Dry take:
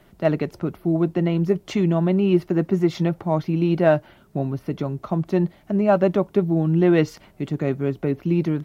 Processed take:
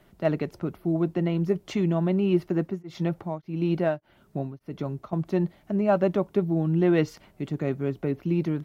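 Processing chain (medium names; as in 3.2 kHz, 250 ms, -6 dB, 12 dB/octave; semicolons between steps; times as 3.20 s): 2.54–5.13 s: tremolo of two beating tones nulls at 1.7 Hz; trim -4.5 dB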